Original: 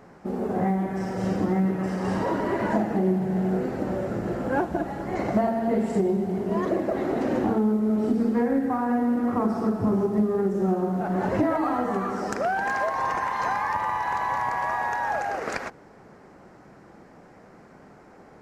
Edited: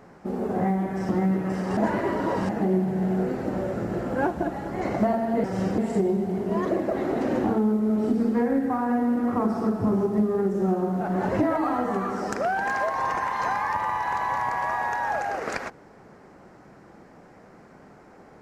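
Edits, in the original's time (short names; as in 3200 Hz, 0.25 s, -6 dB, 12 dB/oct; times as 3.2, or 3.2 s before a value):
1.09–1.43 move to 5.78
2.11–2.83 reverse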